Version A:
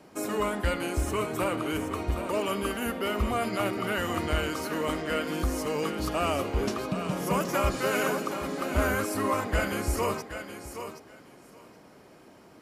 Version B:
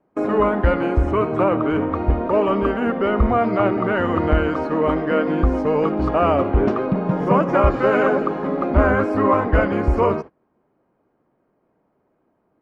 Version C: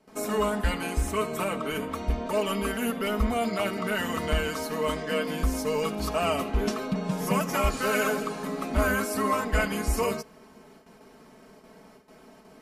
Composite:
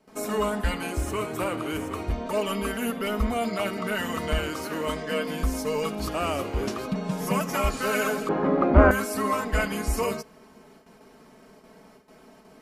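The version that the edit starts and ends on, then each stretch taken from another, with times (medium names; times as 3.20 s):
C
0.92–2.11 s: from A
4.39–4.87 s: from A
6.07–6.88 s: from A
8.29–8.91 s: from B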